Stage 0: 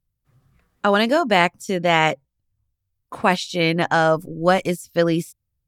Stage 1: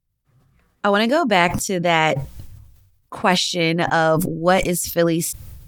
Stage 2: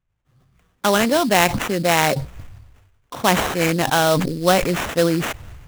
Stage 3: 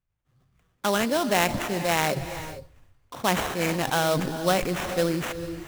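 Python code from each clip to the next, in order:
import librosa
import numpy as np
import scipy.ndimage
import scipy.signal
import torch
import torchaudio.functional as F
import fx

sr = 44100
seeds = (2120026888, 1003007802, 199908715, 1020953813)

y1 = fx.sustainer(x, sr, db_per_s=48.0)
y2 = fx.sample_hold(y1, sr, seeds[0], rate_hz=4700.0, jitter_pct=20)
y3 = fx.rev_gated(y2, sr, seeds[1], gate_ms=480, shape='rising', drr_db=11.0)
y3 = y3 * librosa.db_to_amplitude(-7.0)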